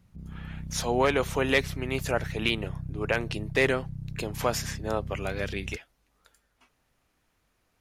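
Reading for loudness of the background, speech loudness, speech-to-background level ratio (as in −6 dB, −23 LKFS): −38.5 LKFS, −29.0 LKFS, 9.5 dB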